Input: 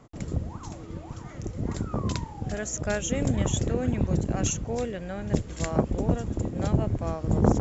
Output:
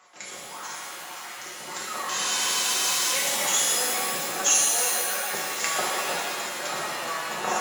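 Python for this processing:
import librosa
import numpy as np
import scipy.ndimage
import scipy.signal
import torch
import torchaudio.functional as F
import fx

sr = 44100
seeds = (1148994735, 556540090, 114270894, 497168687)

y = scipy.signal.sosfilt(scipy.signal.butter(2, 1200.0, 'highpass', fs=sr, output='sos'), x)
y = y + 0.46 * np.pad(y, (int(5.5 * sr / 1000.0), 0))[:len(y)]
y = fx.spec_freeze(y, sr, seeds[0], at_s=2.12, hold_s=1.01)
y = fx.rev_shimmer(y, sr, seeds[1], rt60_s=2.0, semitones=7, shimmer_db=-2, drr_db=-5.0)
y = F.gain(torch.from_numpy(y), 5.0).numpy()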